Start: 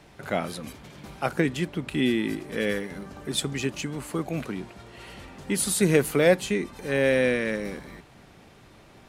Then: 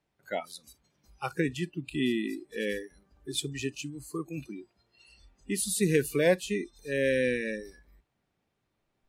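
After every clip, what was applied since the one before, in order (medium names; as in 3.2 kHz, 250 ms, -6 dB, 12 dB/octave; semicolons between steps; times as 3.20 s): spectral noise reduction 23 dB; trim -4.5 dB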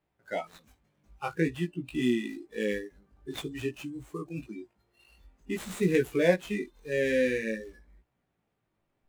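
median filter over 9 samples; chorus 0.5 Hz, delay 16.5 ms, depth 3.2 ms; trim +3.5 dB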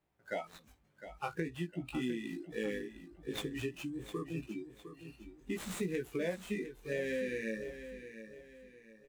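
compression 6:1, threshold -32 dBFS, peak gain reduction 14.5 dB; on a send: feedback delay 707 ms, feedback 37%, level -11.5 dB; on the sum: trim -1.5 dB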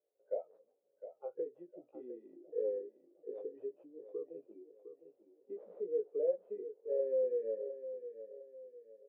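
Butterworth band-pass 500 Hz, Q 3.4; trim +6 dB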